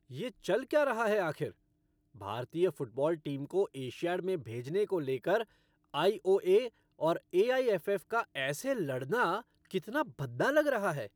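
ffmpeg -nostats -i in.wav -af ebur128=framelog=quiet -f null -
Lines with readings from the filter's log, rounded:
Integrated loudness:
  I:         -32.5 LUFS
  Threshold: -42.7 LUFS
Loudness range:
  LRA:         3.9 LU
  Threshold: -52.9 LUFS
  LRA low:   -35.2 LUFS
  LRA high:  -31.3 LUFS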